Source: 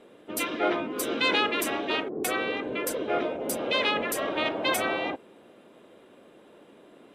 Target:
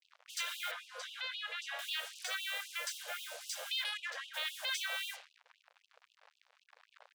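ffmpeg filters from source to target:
-filter_complex "[0:a]highpass=200,equalizer=f=220:t=q:w=4:g=9,equalizer=f=1.6k:t=q:w=4:g=8,equalizer=f=2.5k:t=q:w=4:g=-6,lowpass=f=6.3k:w=0.5412,lowpass=f=6.3k:w=1.3066,aecho=1:1:60|120|180|240:0.178|0.0836|0.0393|0.0185,acrusher=bits=6:mix=0:aa=0.5,acrossover=split=2400[a][b];[a]acompressor=threshold=-43dB:ratio=10[c];[c][b]amix=inputs=2:normalize=0,alimiter=level_in=2.5dB:limit=-24dB:level=0:latency=1:release=100,volume=-2.5dB,asettb=1/sr,asplit=3[d][e][f];[d]atrim=end=0.714[g];[e]atrim=start=0.71:end=1.79,asetpts=PTS-STARTPTS,afade=t=in:d=0.004:c=qsin,afade=t=out:st=1.076:d=0.004:c=qsin,aemphasis=mode=reproduction:type=riaa[h];[f]atrim=start=1.786[i];[g][h]acrossfade=d=0.004:c1=hsin:c2=qsin[j];[j][i]acrossfade=d=0.004:c1=qsin:c2=hsin,asplit=3[k][l][m];[k]afade=t=out:st=3.83:d=0.02[n];[l]adynamicsmooth=sensitivity=7:basefreq=1.8k,afade=t=in:st=3.83:d=0.02,afade=t=out:st=4.33:d=0.02[o];[m]afade=t=in:st=4.33:d=0.02[p];[n][o][p]amix=inputs=3:normalize=0,afftfilt=real='re*gte(b*sr/1024,440*pow(2600/440,0.5+0.5*sin(2*PI*3.8*pts/sr)))':imag='im*gte(b*sr/1024,440*pow(2600/440,0.5+0.5*sin(2*PI*3.8*pts/sr)))':win_size=1024:overlap=0.75,volume=1.5dB"

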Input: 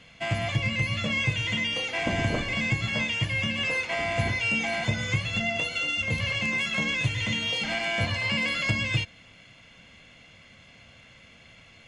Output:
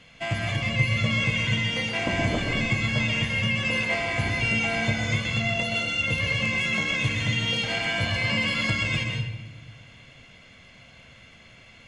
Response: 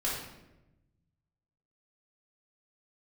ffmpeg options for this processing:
-filter_complex "[0:a]asplit=2[a][b];[1:a]atrim=start_sample=2205,asetrate=41895,aresample=44100,adelay=123[c];[b][c]afir=irnorm=-1:irlink=0,volume=-9dB[d];[a][d]amix=inputs=2:normalize=0"

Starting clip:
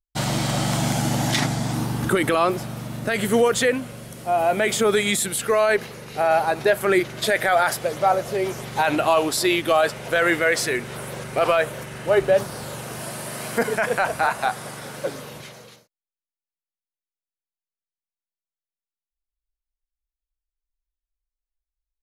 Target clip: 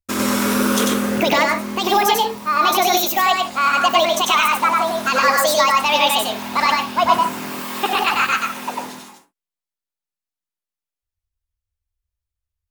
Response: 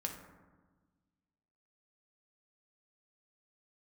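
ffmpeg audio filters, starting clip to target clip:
-filter_complex "[0:a]asetrate=76440,aresample=44100,asplit=2[a][b];[1:a]atrim=start_sample=2205,atrim=end_sample=3528,adelay=95[c];[b][c]afir=irnorm=-1:irlink=0,volume=0dB[d];[a][d]amix=inputs=2:normalize=0,volume=1.5dB"

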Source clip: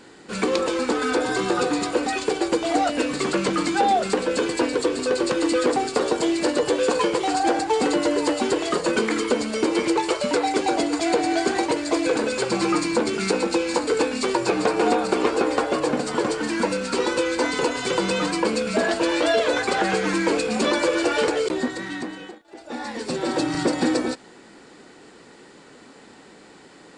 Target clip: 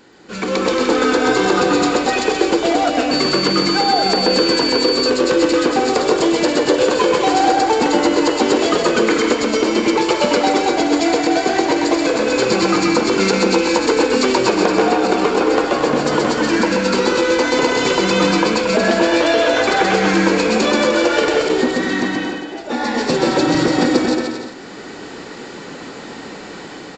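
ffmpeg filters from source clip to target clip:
-filter_complex "[0:a]aresample=16000,aresample=44100,acompressor=threshold=-21dB:ratio=6,aecho=1:1:130|227.5|300.6|355.5|396.6:0.631|0.398|0.251|0.158|0.1,asettb=1/sr,asplit=3[a][b][c];[a]atrim=end=3.114[d];[b]atrim=start=3.11:end=5.1,asetpts=PTS-STARTPTS,afade=t=in:d=0.004:c=qsin,afade=t=out:st=1.986:d=0.004:c=qsin,aeval=exprs='val(0)+0.0501*sin(2*PI*4500*n/s)':c=same[e];[c]atrim=start=5.096[f];[d][e]acrossfade=d=0.004:c1=hsin:c2=qsin[g];[g][f]acrossfade=d=0.004:c1=qsin:c2=hsin,dynaudnorm=f=120:g=9:m=14dB,volume=-1dB"

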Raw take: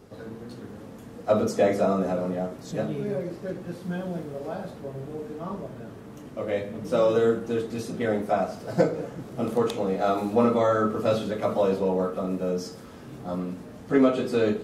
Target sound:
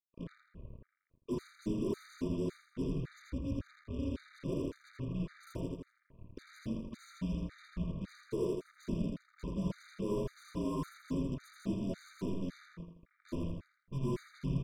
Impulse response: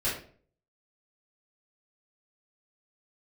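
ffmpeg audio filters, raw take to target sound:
-filter_complex "[0:a]highpass=f=62:p=1,afwtdn=0.0316,highpass=f=320:t=q:w=0.5412,highpass=f=320:t=q:w=1.307,lowpass=f=2.6k:t=q:w=0.5176,lowpass=f=2.6k:t=q:w=0.7071,lowpass=f=2.6k:t=q:w=1.932,afreqshift=-280,areverse,acompressor=threshold=-34dB:ratio=8,areverse,equalizer=f=1.2k:w=4.8:g=-13.5,acrusher=bits=7:mix=0:aa=0.5,asuperstop=centerf=790:order=20:qfactor=3.3,asplit=2[a][b];[b]aecho=0:1:82|164|246|328|410:0.668|0.287|0.124|0.0531|0.0228[c];[a][c]amix=inputs=2:normalize=0,afftfilt=real='re*gt(sin(2*PI*1.8*pts/sr)*(1-2*mod(floor(b*sr/1024/1200),2)),0)':imag='im*gt(sin(2*PI*1.8*pts/sr)*(1-2*mod(floor(b*sr/1024/1200),2)),0)':win_size=1024:overlap=0.75,volume=1dB"

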